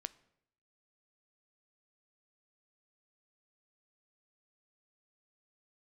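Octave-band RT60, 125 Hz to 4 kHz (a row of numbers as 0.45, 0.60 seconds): 0.85, 0.75, 0.75, 0.70, 0.65, 0.55 seconds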